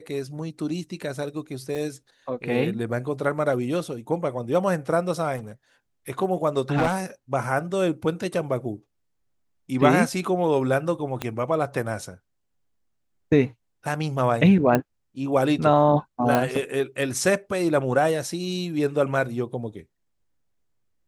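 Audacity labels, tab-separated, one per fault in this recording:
1.750000	1.760000	drop-out 5.4 ms
5.360000	5.520000	clipping −31 dBFS
6.740000	6.960000	clipping −16.5 dBFS
11.220000	11.220000	click −13 dBFS
14.750000	14.750000	click −8 dBFS
16.350000	16.350000	click −8 dBFS

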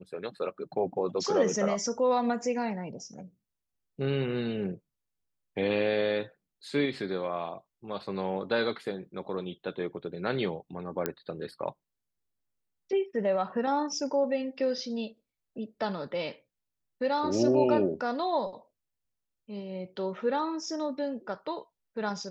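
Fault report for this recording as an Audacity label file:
11.060000	11.060000	click −14 dBFS

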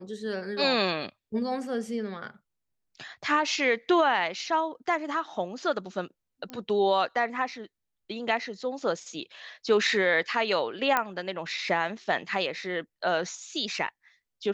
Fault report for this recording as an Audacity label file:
6.500000	6.500000	click −23 dBFS
10.970000	10.970000	click −10 dBFS

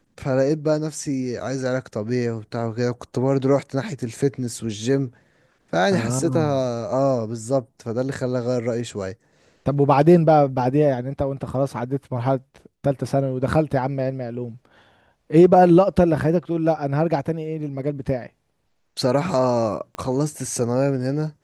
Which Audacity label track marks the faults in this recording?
19.950000	19.950000	click −18 dBFS

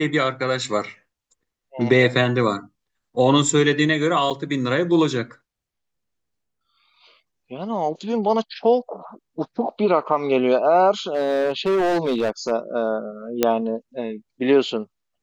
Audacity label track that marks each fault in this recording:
4.300000	4.310000	drop-out 6.9 ms
11.140000	12.510000	clipping −16.5 dBFS
13.430000	13.430000	click −3 dBFS

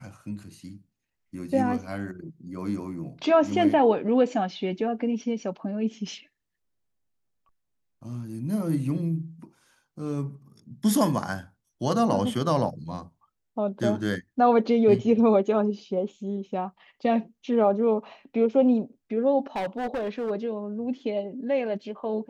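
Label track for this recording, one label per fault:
19.560000	20.310000	clipping −25.5 dBFS

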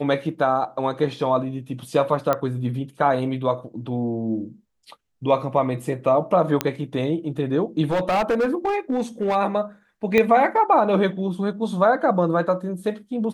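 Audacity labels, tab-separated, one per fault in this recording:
2.330000	2.330000	click −9 dBFS
6.610000	6.610000	click −5 dBFS
7.850000	9.360000	clipping −17 dBFS
10.180000	10.180000	click −7 dBFS

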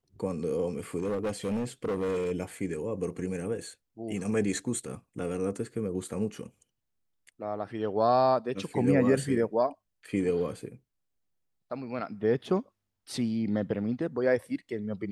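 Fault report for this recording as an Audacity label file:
0.990000	2.320000	clipping −26.5 dBFS

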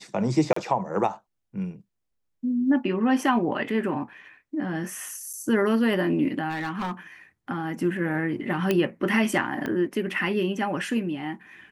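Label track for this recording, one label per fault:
0.530000	0.560000	drop-out 34 ms
5.330000	5.340000	drop-out 6 ms
6.490000	6.920000	clipping −25.5 dBFS
8.710000	8.710000	click −10 dBFS
9.660000	9.660000	click −17 dBFS

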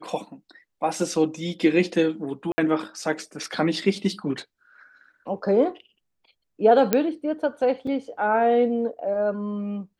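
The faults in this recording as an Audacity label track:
2.520000	2.580000	drop-out 60 ms
6.930000	6.930000	click −5 dBFS
7.870000	7.870000	drop-out 3.7 ms

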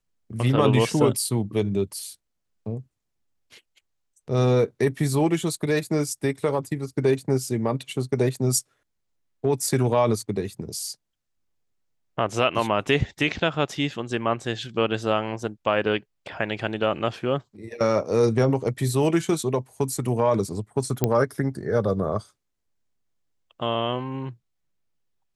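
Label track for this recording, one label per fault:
21.040000	21.040000	click −7 dBFS

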